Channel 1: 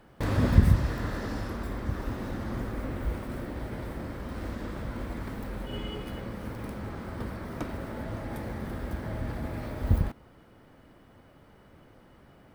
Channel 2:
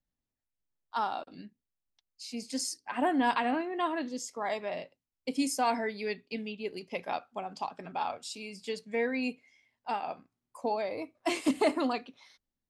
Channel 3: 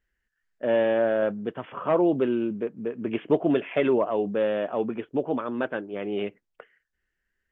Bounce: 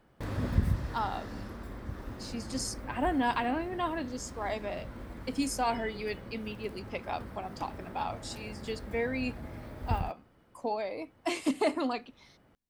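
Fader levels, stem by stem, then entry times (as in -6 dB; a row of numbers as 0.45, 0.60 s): -8.0 dB, -1.5 dB, off; 0.00 s, 0.00 s, off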